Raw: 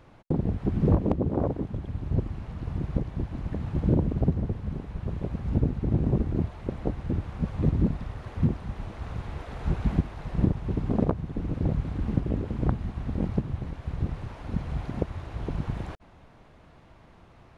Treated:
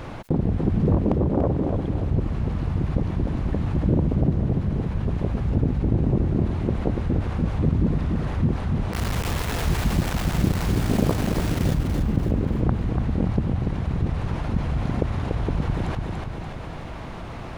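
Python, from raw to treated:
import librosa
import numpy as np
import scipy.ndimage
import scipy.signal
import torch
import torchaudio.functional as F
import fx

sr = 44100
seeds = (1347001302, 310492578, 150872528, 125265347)

y = fx.quant_dither(x, sr, seeds[0], bits=6, dither='none', at=(8.93, 11.74))
y = fx.echo_feedback(y, sr, ms=289, feedback_pct=39, wet_db=-7.5)
y = fx.env_flatten(y, sr, amount_pct=50)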